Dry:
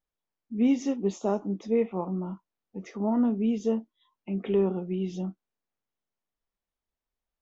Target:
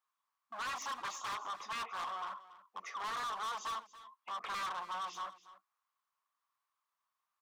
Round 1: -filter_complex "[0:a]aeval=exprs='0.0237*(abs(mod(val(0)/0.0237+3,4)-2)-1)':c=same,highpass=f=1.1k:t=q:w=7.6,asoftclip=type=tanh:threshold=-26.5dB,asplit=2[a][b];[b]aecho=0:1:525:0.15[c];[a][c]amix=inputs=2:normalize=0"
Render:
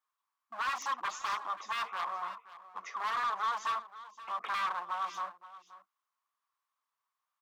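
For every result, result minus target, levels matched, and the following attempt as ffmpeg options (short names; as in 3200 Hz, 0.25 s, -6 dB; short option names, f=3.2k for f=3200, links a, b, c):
echo 0.242 s late; soft clip: distortion -9 dB
-filter_complex "[0:a]aeval=exprs='0.0237*(abs(mod(val(0)/0.0237+3,4)-2)-1)':c=same,highpass=f=1.1k:t=q:w=7.6,asoftclip=type=tanh:threshold=-26.5dB,asplit=2[a][b];[b]aecho=0:1:283:0.15[c];[a][c]amix=inputs=2:normalize=0"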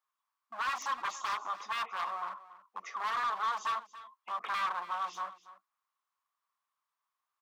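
soft clip: distortion -9 dB
-filter_complex "[0:a]aeval=exprs='0.0237*(abs(mod(val(0)/0.0237+3,4)-2)-1)':c=same,highpass=f=1.1k:t=q:w=7.6,asoftclip=type=tanh:threshold=-36.5dB,asplit=2[a][b];[b]aecho=0:1:283:0.15[c];[a][c]amix=inputs=2:normalize=0"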